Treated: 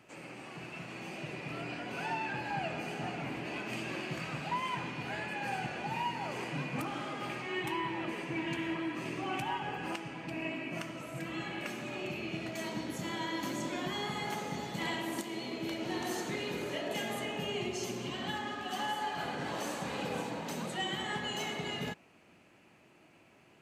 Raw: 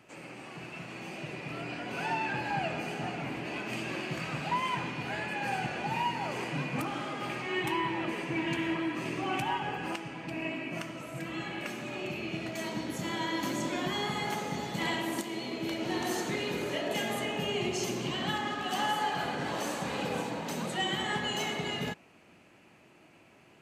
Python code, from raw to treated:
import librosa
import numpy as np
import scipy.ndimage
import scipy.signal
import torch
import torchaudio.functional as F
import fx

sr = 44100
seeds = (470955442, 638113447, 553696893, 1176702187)

p1 = fx.rider(x, sr, range_db=4, speed_s=0.5)
p2 = x + F.gain(torch.from_numpy(p1), -3.0).numpy()
p3 = fx.notch_comb(p2, sr, f0_hz=160.0, at=(17.64, 19.18))
y = F.gain(torch.from_numpy(p3), -8.0).numpy()